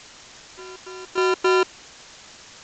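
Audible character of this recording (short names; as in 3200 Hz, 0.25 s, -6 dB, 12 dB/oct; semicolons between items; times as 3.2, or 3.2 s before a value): a buzz of ramps at a fixed pitch in blocks of 32 samples; chopped level 1.7 Hz, depth 60%, duty 35%; a quantiser's noise floor 8-bit, dither triangular; G.722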